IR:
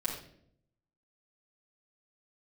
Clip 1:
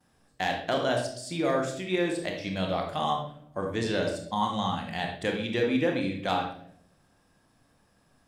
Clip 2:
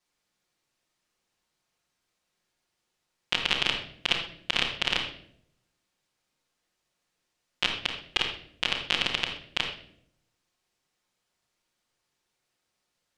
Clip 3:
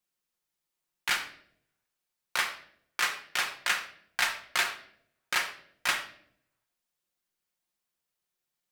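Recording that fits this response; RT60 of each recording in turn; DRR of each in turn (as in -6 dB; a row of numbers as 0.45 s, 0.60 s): 2; 0.65 s, 0.65 s, 0.65 s; -16.0 dB, -6.5 dB, 3.0 dB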